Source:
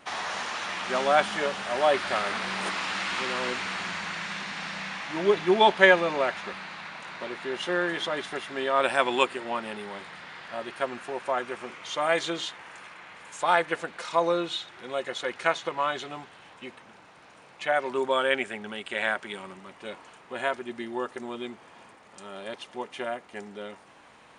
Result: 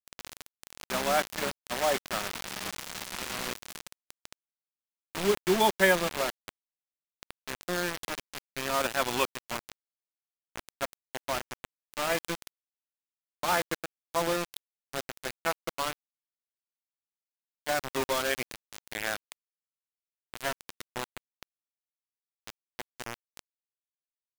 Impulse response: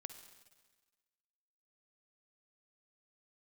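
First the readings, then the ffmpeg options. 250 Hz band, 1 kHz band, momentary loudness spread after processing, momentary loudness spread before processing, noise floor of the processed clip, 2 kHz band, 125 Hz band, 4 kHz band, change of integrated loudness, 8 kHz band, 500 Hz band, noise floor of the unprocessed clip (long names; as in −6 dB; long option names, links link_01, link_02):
−3.5 dB, −6.0 dB, 19 LU, 18 LU, below −85 dBFS, −6.0 dB, 0.0 dB, −4.0 dB, −4.0 dB, +5.0 dB, −5.5 dB, −53 dBFS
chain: -af "lowshelf=frequency=120:width_type=q:width=3:gain=-13.5,acrusher=bits=3:mix=0:aa=0.000001,volume=-6dB"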